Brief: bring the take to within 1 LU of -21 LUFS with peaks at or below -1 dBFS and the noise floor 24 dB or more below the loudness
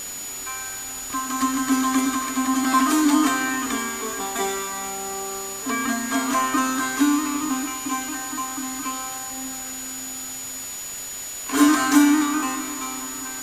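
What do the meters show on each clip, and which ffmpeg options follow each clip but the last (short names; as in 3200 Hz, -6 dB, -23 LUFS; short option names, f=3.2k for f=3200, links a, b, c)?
steady tone 6900 Hz; tone level -32 dBFS; noise floor -33 dBFS; noise floor target -47 dBFS; loudness -23.0 LUFS; peak -4.0 dBFS; loudness target -21.0 LUFS
-> -af "bandreject=f=6.9k:w=30"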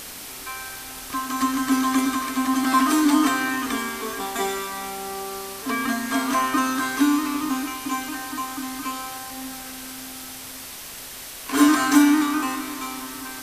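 steady tone none; noise floor -38 dBFS; noise floor target -48 dBFS
-> -af "afftdn=nr=10:nf=-38"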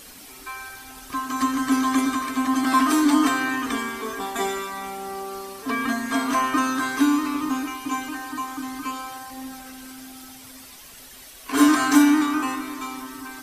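noise floor -44 dBFS; noise floor target -47 dBFS
-> -af "afftdn=nr=6:nf=-44"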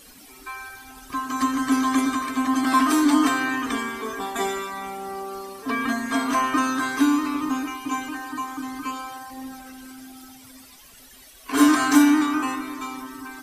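noise floor -48 dBFS; loudness -23.0 LUFS; peak -4.0 dBFS; loudness target -21.0 LUFS
-> -af "volume=2dB"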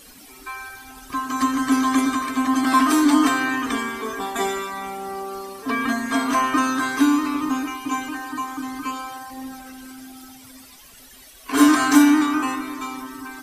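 loudness -21.0 LUFS; peak -2.0 dBFS; noise floor -46 dBFS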